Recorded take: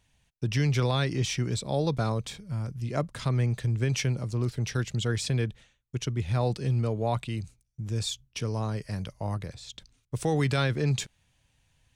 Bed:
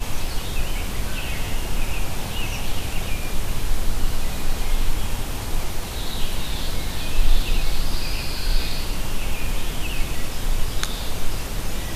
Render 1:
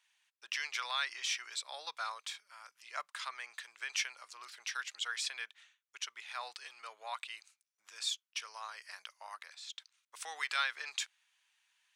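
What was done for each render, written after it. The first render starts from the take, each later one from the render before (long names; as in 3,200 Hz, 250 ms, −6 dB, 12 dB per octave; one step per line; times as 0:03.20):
high-pass filter 1,100 Hz 24 dB per octave
high-shelf EQ 5,700 Hz −7 dB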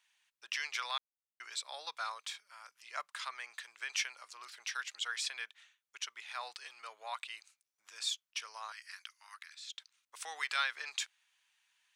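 0:00.98–0:01.40: silence
0:08.72–0:09.77: high-pass filter 1,300 Hz 24 dB per octave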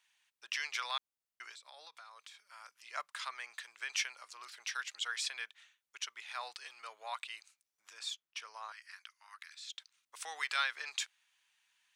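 0:01.51–0:02.51: downward compressor 10 to 1, threshold −50 dBFS
0:07.93–0:09.39: high-shelf EQ 2,800 Hz −7.5 dB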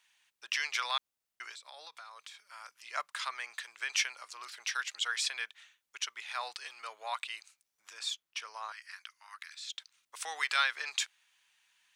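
level +4.5 dB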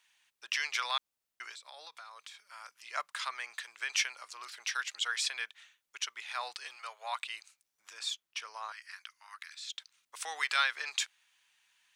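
0:06.76–0:07.17: high-pass filter 540 Hz 24 dB per octave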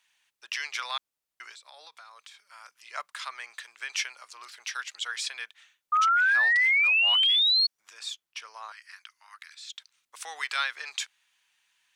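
0:05.92–0:07.67: sound drawn into the spectrogram rise 1,200–4,400 Hz −22 dBFS
tape wow and flutter 19 cents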